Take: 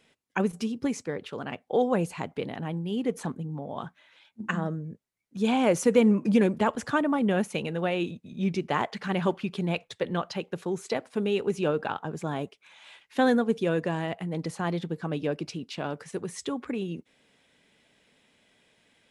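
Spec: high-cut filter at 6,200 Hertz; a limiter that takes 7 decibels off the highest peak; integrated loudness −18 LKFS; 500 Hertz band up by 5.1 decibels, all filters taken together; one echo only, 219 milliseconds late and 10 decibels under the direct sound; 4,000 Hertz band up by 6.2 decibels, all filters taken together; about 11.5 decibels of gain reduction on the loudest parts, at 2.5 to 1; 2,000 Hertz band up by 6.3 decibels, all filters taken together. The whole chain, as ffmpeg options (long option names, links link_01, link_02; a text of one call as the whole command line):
ffmpeg -i in.wav -af "lowpass=6200,equalizer=frequency=500:width_type=o:gain=5.5,equalizer=frequency=2000:width_type=o:gain=6.5,equalizer=frequency=4000:width_type=o:gain=6,acompressor=threshold=-29dB:ratio=2.5,alimiter=limit=-19.5dB:level=0:latency=1,aecho=1:1:219:0.316,volume=14.5dB" out.wav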